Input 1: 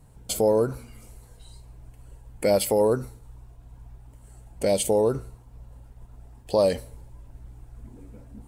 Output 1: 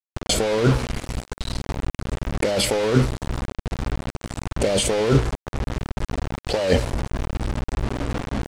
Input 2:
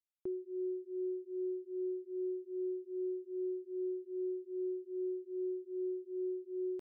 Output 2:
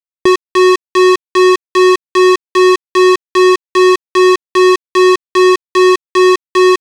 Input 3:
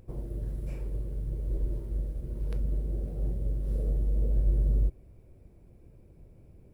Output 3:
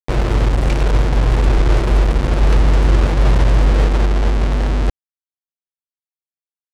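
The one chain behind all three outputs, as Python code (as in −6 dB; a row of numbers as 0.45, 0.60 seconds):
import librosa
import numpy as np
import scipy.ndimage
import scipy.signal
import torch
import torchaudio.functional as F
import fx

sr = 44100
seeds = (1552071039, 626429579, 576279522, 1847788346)

y = fx.dynamic_eq(x, sr, hz=180.0, q=2.9, threshold_db=-48.0, ratio=4.0, max_db=-3)
y = fx.over_compress(y, sr, threshold_db=-29.0, ratio=-1.0)
y = fx.quant_dither(y, sr, seeds[0], bits=6, dither='none')
y = fx.air_absorb(y, sr, metres=85.0)
y = librosa.util.normalize(y) * 10.0 ** (-3 / 20.0)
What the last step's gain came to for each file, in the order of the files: +11.0, +27.0, +17.5 decibels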